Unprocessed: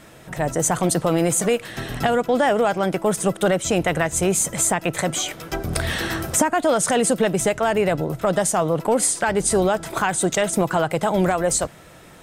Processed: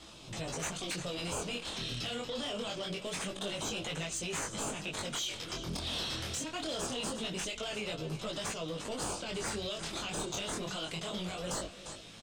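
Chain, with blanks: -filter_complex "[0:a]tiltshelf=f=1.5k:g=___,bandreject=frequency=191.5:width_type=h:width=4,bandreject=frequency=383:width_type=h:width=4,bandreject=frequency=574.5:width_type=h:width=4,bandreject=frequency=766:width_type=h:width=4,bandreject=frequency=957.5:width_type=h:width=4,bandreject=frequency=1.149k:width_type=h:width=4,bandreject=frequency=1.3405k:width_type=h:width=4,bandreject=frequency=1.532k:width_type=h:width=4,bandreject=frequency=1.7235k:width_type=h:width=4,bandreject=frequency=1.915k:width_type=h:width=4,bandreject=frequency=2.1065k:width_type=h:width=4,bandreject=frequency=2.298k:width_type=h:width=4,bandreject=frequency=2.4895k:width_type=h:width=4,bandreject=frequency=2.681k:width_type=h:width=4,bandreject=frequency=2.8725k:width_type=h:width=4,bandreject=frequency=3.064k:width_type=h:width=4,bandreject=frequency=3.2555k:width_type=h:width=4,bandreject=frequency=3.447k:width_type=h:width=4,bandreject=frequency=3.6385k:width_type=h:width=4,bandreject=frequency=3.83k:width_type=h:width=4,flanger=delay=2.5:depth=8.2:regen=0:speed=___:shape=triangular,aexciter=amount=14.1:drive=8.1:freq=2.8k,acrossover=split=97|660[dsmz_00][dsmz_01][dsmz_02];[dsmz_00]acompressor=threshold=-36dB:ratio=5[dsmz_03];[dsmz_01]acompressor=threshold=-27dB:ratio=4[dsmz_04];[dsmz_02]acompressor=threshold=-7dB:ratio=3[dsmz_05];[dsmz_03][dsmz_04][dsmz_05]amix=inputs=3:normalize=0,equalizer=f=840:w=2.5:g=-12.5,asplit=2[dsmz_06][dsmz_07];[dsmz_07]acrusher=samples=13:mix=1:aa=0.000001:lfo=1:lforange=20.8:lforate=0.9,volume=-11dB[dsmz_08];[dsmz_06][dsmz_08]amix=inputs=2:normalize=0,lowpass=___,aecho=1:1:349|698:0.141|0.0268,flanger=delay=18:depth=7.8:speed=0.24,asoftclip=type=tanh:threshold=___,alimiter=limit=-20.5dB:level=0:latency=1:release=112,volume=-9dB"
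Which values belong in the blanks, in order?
5.5, 1.2, 3.9k, -14dB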